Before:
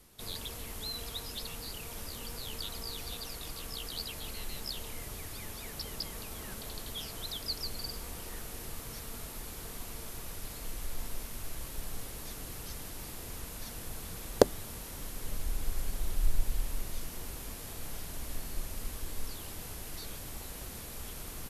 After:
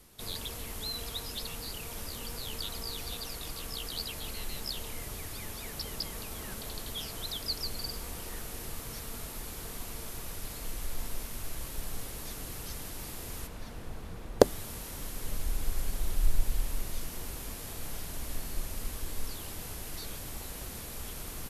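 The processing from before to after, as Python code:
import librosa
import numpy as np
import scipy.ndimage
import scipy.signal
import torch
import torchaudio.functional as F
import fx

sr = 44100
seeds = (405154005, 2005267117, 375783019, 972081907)

y = fx.lowpass(x, sr, hz=fx.line((13.46, 2200.0), (14.4, 1100.0)), slope=6, at=(13.46, 14.4), fade=0.02)
y = F.gain(torch.from_numpy(y), 2.0).numpy()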